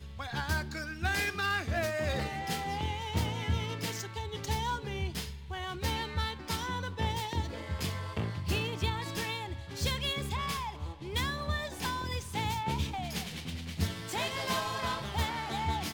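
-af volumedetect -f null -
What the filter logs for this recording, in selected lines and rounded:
mean_volume: -34.1 dB
max_volume: -17.3 dB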